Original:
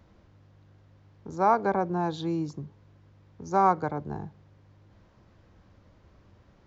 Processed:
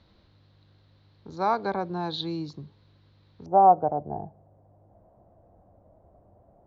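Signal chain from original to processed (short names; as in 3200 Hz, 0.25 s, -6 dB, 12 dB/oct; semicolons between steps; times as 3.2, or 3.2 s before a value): synth low-pass 4100 Hz, resonance Q 6.8, from 3.46 s 690 Hz; gain -3 dB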